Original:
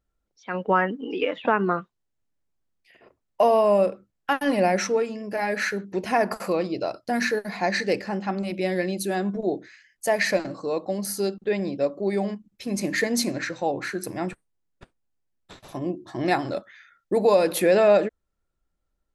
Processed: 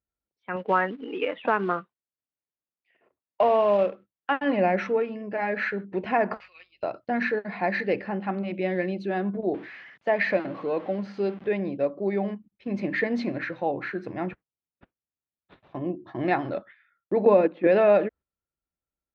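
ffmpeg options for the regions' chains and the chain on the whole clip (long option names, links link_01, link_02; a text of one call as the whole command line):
ffmpeg -i in.wav -filter_complex "[0:a]asettb=1/sr,asplit=3[link_01][link_02][link_03];[link_01]atrim=end=0.564[link_04];[link_02]atrim=start=0.56:end=4.31,asetpts=PTS-STARTPTS,afade=type=in:duration=0.004:curve=qsin,afade=type=out:start_time=3.746:duration=0.004:curve=qsin,lowshelf=frequency=160:gain=-10.5,acrusher=bits=4:mode=log:mix=0:aa=0.000001[link_05];[link_03]atrim=start=4.306[link_06];[link_04][link_05]acrossfade=duration=0.004:curve1=hsin:curve2=qsin[link_07];[link_07][link_06]acrossfade=duration=0.004:curve1=qsin:curve2=hsin,asettb=1/sr,asplit=3[link_08][link_09][link_10];[link_08]atrim=end=6.404[link_11];[link_09]atrim=start=6.4:end=6.83,asetpts=PTS-STARTPTS,afade=type=in:duration=0.004:curve=qsin,afade=type=out:start_time=0.426:duration=0.004:curve=qsin,asuperpass=centerf=4000:order=4:qfactor=0.97,aecho=1:1:5.5:0.54,atrim=end_sample=18963,aeval=exprs='val(0)+0.000398*(sin(2*PI*50*n/s)+sin(2*PI*2*50*n/s)/2+sin(2*PI*3*50*n/s)/3+sin(2*PI*4*50*n/s)/4+sin(2*PI*5*50*n/s)/5)':channel_layout=same[link_12];[link_10]atrim=start=6.826[link_13];[link_11][link_12]acrossfade=duration=0.004:curve1=hsin:curve2=qsin[link_14];[link_14][link_13]acrossfade=duration=0.004:curve1=qsin:curve2=hsin,asettb=1/sr,asplit=3[link_15][link_16][link_17];[link_15]atrim=end=9.544[link_18];[link_16]atrim=start=9.54:end=11.47,asetpts=PTS-STARTPTS,afade=type=in:duration=0.004:curve=qsin,afade=type=out:start_time=1.926:duration=0.004:curve=qsin,aeval=exprs='val(0)+0.5*0.0133*sgn(val(0))':channel_layout=same,acrossover=split=7200[link_19][link_20];[link_20]acompressor=threshold=-46dB:ratio=4:attack=1:release=60[link_21];[link_19][link_21]amix=inputs=2:normalize=0,highpass=130[link_22];[link_17]atrim=start=11.466[link_23];[link_18][link_22]acrossfade=duration=0.004:curve1=hsin:curve2=qsin[link_24];[link_24][link_23]acrossfade=duration=0.004:curve1=qsin:curve2=hsin,asettb=1/sr,asplit=3[link_25][link_26][link_27];[link_25]atrim=end=17.254[link_28];[link_26]atrim=start=17.25:end=17.67,asetpts=PTS-STARTPTS,afade=type=in:duration=0.004:curve=qsin,afade=type=out:start_time=0.416:duration=0.004:curve=qsin,agate=range=-14dB:threshold=-21dB:ratio=16:release=100:detection=peak,lowpass=3100,equalizer=frequency=260:width=1.6:gain=10.5[link_29];[link_27]atrim=start=17.666[link_30];[link_28][link_29]acrossfade=duration=0.004:curve1=hsin:curve2=qsin[link_31];[link_31][link_30]acrossfade=duration=0.004:curve1=qsin:curve2=hsin,lowpass=frequency=3000:width=0.5412,lowpass=frequency=3000:width=1.3066,agate=range=-10dB:threshold=-44dB:ratio=16:detection=peak,highpass=59,volume=-1.5dB" out.wav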